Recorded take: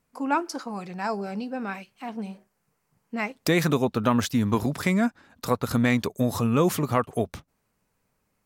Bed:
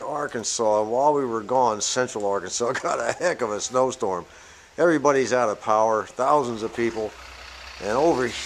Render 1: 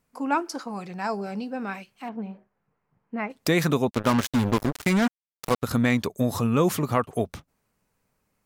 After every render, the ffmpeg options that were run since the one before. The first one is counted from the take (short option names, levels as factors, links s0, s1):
-filter_complex "[0:a]asplit=3[s0][s1][s2];[s0]afade=t=out:st=2.08:d=0.02[s3];[s1]lowpass=1900,afade=t=in:st=2.08:d=0.02,afade=t=out:st=3.29:d=0.02[s4];[s2]afade=t=in:st=3.29:d=0.02[s5];[s3][s4][s5]amix=inputs=3:normalize=0,asplit=3[s6][s7][s8];[s6]afade=t=out:st=3.89:d=0.02[s9];[s7]acrusher=bits=3:mix=0:aa=0.5,afade=t=in:st=3.89:d=0.02,afade=t=out:st=5.62:d=0.02[s10];[s8]afade=t=in:st=5.62:d=0.02[s11];[s9][s10][s11]amix=inputs=3:normalize=0"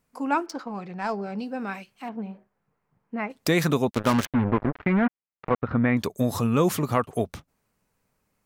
-filter_complex "[0:a]asettb=1/sr,asplit=3[s0][s1][s2];[s0]atrim=end=0.464[s3];[s1]atrim=start=0.46:end=1.39,asetpts=PTS-STARTPTS,afade=t=in:d=0.004:c=qsin,afade=t=out:st=0.926:d=0.004:c=qsin,adynamicsmooth=sensitivity=5:basefreq=3000[s4];[s2]atrim=start=1.386[s5];[s3][s4]acrossfade=d=0.004:c1=hsin:c2=qsin[s6];[s6][s5]acrossfade=d=0.004:c1=qsin:c2=hsin,asettb=1/sr,asplit=3[s7][s8][s9];[s7]atrim=end=4.254[s10];[s8]atrim=start=4.25:end=5.97,asetpts=PTS-STARTPTS,afade=t=in:d=0.004:c=qsin,afade=t=out:st=1.716:d=0.004:c=qsin,lowpass=f=2200:w=0.5412,lowpass=f=2200:w=1.3066[s11];[s9]atrim=start=5.966[s12];[s10][s11]acrossfade=d=0.004:c1=hsin:c2=qsin[s13];[s13][s12]acrossfade=d=0.004:c1=qsin:c2=hsin"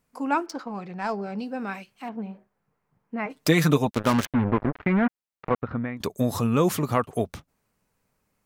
-filter_complex "[0:a]asettb=1/sr,asplit=3[s0][s1][s2];[s0]atrim=end=3.254[s3];[s1]atrim=start=3.25:end=3.87,asetpts=PTS-STARTPTS,afade=t=in:d=0.004:c=qsin,afade=t=out:st=0.616:d=0.004:c=qsin,aecho=1:1:6.6:0.65,atrim=end_sample=27342[s4];[s2]atrim=start=3.866[s5];[s3][s4]acrossfade=d=0.004:c1=hsin:c2=qsin[s6];[s6][s5]acrossfade=d=0.004:c1=qsin:c2=hsin,asplit=2[s7][s8];[s7]atrim=end=6,asetpts=PTS-STARTPTS,afade=t=out:st=5.49:d=0.51:silence=0.133352[s9];[s8]atrim=start=6,asetpts=PTS-STARTPTS,afade=t=in:d=0.004:c=hsin:silence=0.133352[s10];[s9][s10]concat=n=2:v=0:a=1"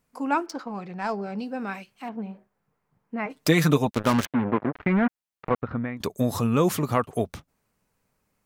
-filter_complex "[0:a]asettb=1/sr,asplit=3[s0][s1][s2];[s0]atrim=end=4.264[s3];[s1]atrim=start=4.26:end=4.73,asetpts=PTS-STARTPTS,afade=t=in:d=0.004:c=qsin,afade=t=out:st=0.466:d=0.004:c=qsin,highpass=160,lowpass=4400[s4];[s2]atrim=start=4.726[s5];[s3][s4]acrossfade=d=0.004:c1=hsin:c2=qsin[s6];[s6][s5]acrossfade=d=0.004:c1=qsin:c2=hsin"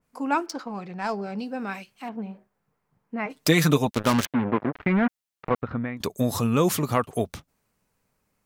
-af "adynamicequalizer=threshold=0.0126:dfrequency=2500:dqfactor=0.7:tfrequency=2500:tqfactor=0.7:attack=5:release=100:ratio=0.375:range=2:mode=boostabove:tftype=highshelf"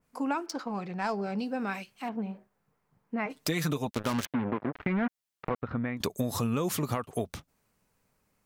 -af "alimiter=limit=0.188:level=0:latency=1:release=417,acompressor=threshold=0.0447:ratio=3"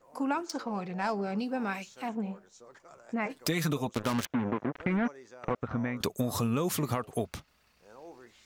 -filter_complex "[1:a]volume=0.0335[s0];[0:a][s0]amix=inputs=2:normalize=0"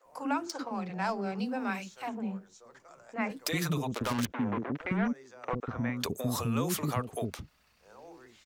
-filter_complex "[0:a]acrossover=split=390[s0][s1];[s0]adelay=50[s2];[s2][s1]amix=inputs=2:normalize=0"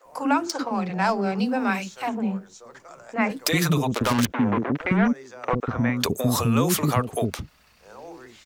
-af "volume=2.99"